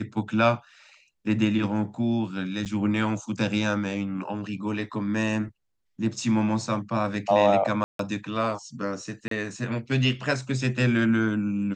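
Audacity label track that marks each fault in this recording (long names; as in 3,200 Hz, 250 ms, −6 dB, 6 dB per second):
2.650000	2.660000	drop-out 8.6 ms
7.840000	7.990000	drop-out 153 ms
9.280000	9.310000	drop-out 33 ms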